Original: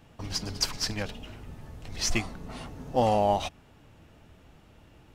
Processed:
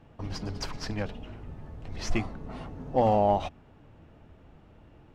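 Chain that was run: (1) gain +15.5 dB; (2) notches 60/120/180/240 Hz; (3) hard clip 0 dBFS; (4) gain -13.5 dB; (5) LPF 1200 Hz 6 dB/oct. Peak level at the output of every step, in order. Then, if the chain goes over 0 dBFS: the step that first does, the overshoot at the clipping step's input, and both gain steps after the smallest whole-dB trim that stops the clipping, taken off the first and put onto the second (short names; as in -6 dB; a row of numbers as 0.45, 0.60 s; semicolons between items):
+3.5, +3.5, 0.0, -13.5, -13.5 dBFS; step 1, 3.5 dB; step 1 +11.5 dB, step 4 -9.5 dB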